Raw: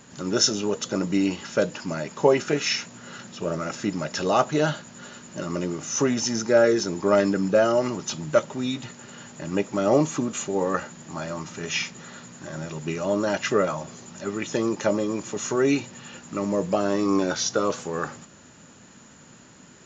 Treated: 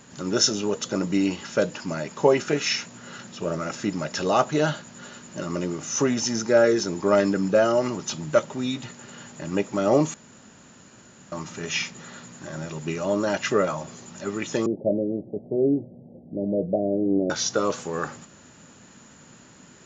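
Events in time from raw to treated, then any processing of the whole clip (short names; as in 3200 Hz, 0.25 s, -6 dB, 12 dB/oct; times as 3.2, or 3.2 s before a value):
10.14–11.32 room tone
14.66–17.3 steep low-pass 710 Hz 72 dB/oct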